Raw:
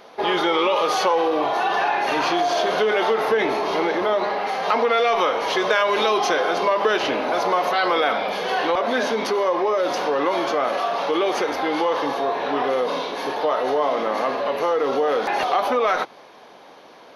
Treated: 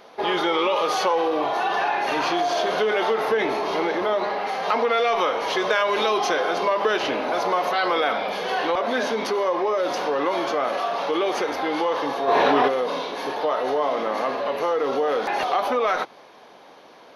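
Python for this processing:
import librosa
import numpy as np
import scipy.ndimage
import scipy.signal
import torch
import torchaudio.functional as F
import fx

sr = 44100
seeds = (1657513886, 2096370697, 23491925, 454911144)

y = fx.env_flatten(x, sr, amount_pct=100, at=(12.27, 12.67), fade=0.02)
y = F.gain(torch.from_numpy(y), -2.0).numpy()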